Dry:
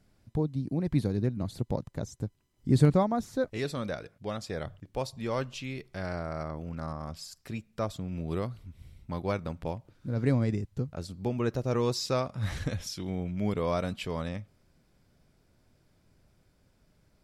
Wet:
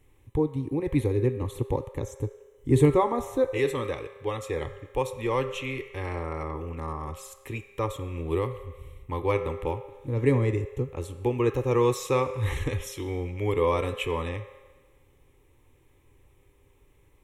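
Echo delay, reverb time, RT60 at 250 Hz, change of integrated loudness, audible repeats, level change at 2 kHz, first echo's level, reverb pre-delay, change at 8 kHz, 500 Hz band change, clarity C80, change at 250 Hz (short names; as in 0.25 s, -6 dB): none, 1.3 s, 1.3 s, +4.0 dB, none, +5.5 dB, none, 7 ms, +2.0 dB, +6.5 dB, 11.5 dB, +1.5 dB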